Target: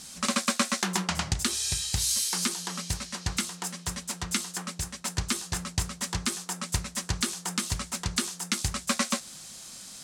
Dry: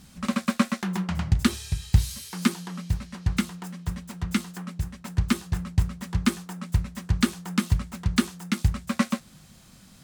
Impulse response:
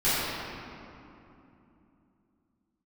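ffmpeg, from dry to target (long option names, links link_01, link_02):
-af "lowpass=9000,bass=frequency=250:gain=-13,treble=frequency=4000:gain=13,alimiter=limit=-15.5dB:level=0:latency=1:release=258,volume=4.5dB"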